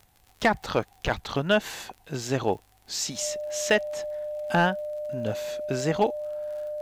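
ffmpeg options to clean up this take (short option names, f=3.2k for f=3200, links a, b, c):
-af "adeclick=t=4,bandreject=f=600:w=30,agate=range=-21dB:threshold=-51dB"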